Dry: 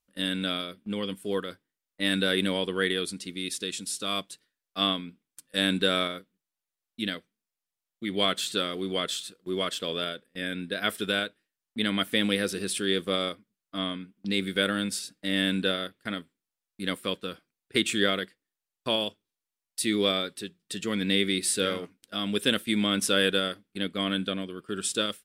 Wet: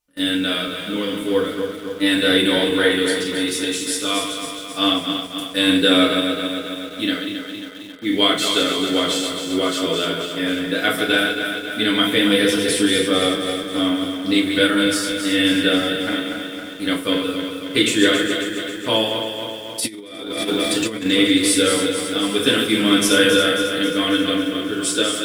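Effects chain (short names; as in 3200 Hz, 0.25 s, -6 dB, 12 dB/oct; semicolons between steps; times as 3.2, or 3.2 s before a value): regenerating reverse delay 0.135 s, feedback 77%, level -6.5 dB; FDN reverb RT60 0.39 s, low-frequency decay 0.9×, high-frequency decay 0.9×, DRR -3 dB; in parallel at -11 dB: bit-crush 6-bit; 19.8–21.06 on the sum: negative-ratio compressor -25 dBFS, ratio -0.5; gain +1.5 dB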